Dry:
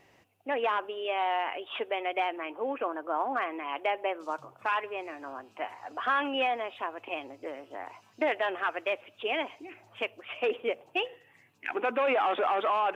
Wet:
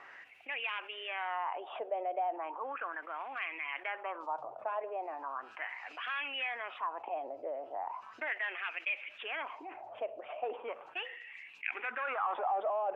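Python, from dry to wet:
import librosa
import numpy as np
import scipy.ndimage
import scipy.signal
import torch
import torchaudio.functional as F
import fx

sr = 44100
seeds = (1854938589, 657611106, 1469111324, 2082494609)

y = fx.wah_lfo(x, sr, hz=0.37, low_hz=630.0, high_hz=2500.0, q=4.6)
y = fx.env_flatten(y, sr, amount_pct=50)
y = y * 10.0 ** (-2.0 / 20.0)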